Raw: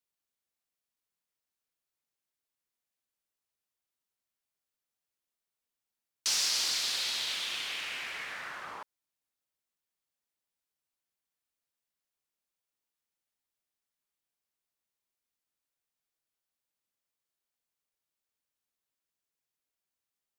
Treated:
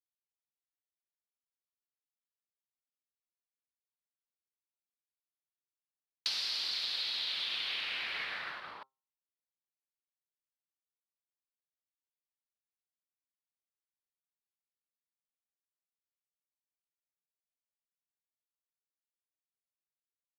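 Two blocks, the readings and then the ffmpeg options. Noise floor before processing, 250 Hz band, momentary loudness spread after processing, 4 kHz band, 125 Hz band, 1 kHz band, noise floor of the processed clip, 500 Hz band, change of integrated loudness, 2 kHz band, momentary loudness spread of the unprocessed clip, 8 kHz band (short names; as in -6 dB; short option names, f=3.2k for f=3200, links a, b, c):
under -85 dBFS, -4.5 dB, 10 LU, -2.0 dB, n/a, -3.5 dB, under -85 dBFS, -4.0 dB, -3.0 dB, -1.5 dB, 15 LU, -17.5 dB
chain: -af "highshelf=f=5.4k:t=q:w=3:g=-9,bandreject=f=132.9:t=h:w=4,bandreject=f=265.8:t=h:w=4,bandreject=f=398.7:t=h:w=4,bandreject=f=531.6:t=h:w=4,bandreject=f=664.5:t=h:w=4,bandreject=f=797.4:t=h:w=4,bandreject=f=930.3:t=h:w=4,bandreject=f=1.0632k:t=h:w=4,bandreject=f=1.1961k:t=h:w=4,bandreject=f=1.329k:t=h:w=4,bandreject=f=1.4619k:t=h:w=4,agate=range=-33dB:threshold=-32dB:ratio=3:detection=peak,acompressor=threshold=-42dB:ratio=8,aresample=32000,aresample=44100,volume=8.5dB"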